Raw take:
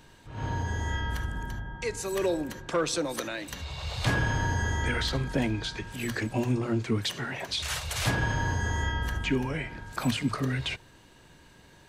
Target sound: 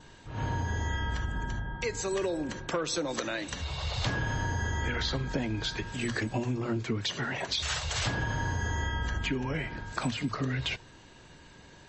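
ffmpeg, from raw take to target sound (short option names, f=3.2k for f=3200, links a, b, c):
-af "acompressor=threshold=-29dB:ratio=8,adynamicequalizer=threshold=0.002:dfrequency=2400:dqfactor=7.5:tfrequency=2400:tqfactor=7.5:attack=5:release=100:ratio=0.375:range=2:mode=cutabove:tftype=bell,volume=2.5dB" -ar 32000 -c:a libmp3lame -b:a 32k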